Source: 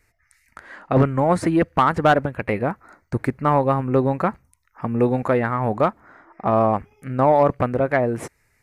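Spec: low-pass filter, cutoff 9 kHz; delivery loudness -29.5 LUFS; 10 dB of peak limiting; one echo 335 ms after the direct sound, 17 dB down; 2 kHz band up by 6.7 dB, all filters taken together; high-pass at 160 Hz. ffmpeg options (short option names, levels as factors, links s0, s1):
-af "highpass=160,lowpass=9000,equalizer=f=2000:t=o:g=9,alimiter=limit=0.316:level=0:latency=1,aecho=1:1:335:0.141,volume=0.501"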